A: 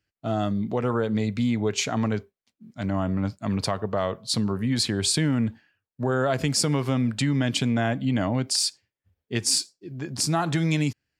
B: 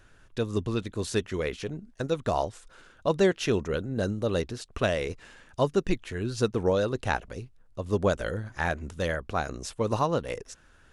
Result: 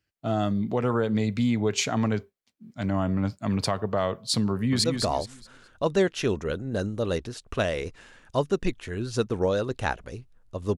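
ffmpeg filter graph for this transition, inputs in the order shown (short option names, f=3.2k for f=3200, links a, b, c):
-filter_complex "[0:a]apad=whole_dur=10.77,atrim=end=10.77,atrim=end=4.842[a];[1:a]atrim=start=2.078:end=8.01[b];[a][b]acrossfade=d=0.004:c1=hsin:c2=hsin,asplit=2[c][d];[d]afade=t=in:st=4.51:d=0.01,afade=t=out:st=4.84:d=0.01,aecho=0:1:210|420|630|840:0.530884|0.159265|0.0477796|0.0143339[e];[c][e]amix=inputs=2:normalize=0"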